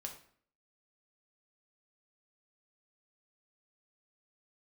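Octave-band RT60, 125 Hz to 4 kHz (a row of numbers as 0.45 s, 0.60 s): 0.55 s, 0.65 s, 0.55 s, 0.55 s, 0.50 s, 0.45 s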